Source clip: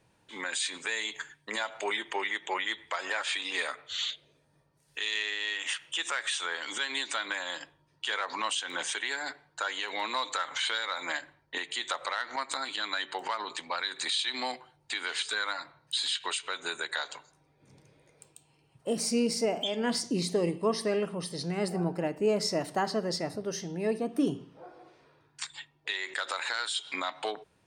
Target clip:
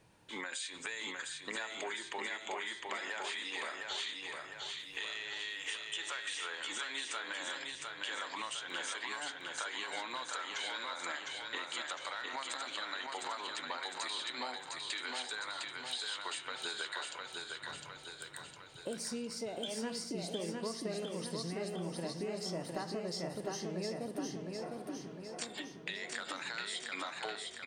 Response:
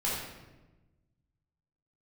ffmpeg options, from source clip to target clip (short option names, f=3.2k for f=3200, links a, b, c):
-af "bandreject=f=132.3:t=h:w=4,bandreject=f=264.6:t=h:w=4,bandreject=f=396.9:t=h:w=4,bandreject=f=529.2:t=h:w=4,bandreject=f=661.5:t=h:w=4,bandreject=f=793.8:t=h:w=4,bandreject=f=926.1:t=h:w=4,bandreject=f=1.0584k:t=h:w=4,bandreject=f=1.1907k:t=h:w=4,bandreject=f=1.323k:t=h:w=4,bandreject=f=1.4553k:t=h:w=4,bandreject=f=1.5876k:t=h:w=4,bandreject=f=1.7199k:t=h:w=4,bandreject=f=1.8522k:t=h:w=4,bandreject=f=1.9845k:t=h:w=4,bandreject=f=2.1168k:t=h:w=4,bandreject=f=2.2491k:t=h:w=4,bandreject=f=2.3814k:t=h:w=4,bandreject=f=2.5137k:t=h:w=4,bandreject=f=2.646k:t=h:w=4,bandreject=f=2.7783k:t=h:w=4,bandreject=f=2.9106k:t=h:w=4,bandreject=f=3.0429k:t=h:w=4,bandreject=f=3.1752k:t=h:w=4,bandreject=f=3.3075k:t=h:w=4,bandreject=f=3.4398k:t=h:w=4,bandreject=f=3.5721k:t=h:w=4,bandreject=f=3.7044k:t=h:w=4,acompressor=threshold=-41dB:ratio=6,aecho=1:1:707|1414|2121|2828|3535|4242|4949|5656:0.668|0.381|0.217|0.124|0.0706|0.0402|0.0229|0.0131,volume=2dB"